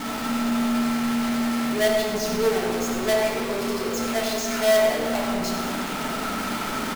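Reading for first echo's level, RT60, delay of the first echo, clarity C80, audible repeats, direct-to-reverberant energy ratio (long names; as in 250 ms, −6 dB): −7.5 dB, 2.0 s, 97 ms, 2.0 dB, 1, −3.0 dB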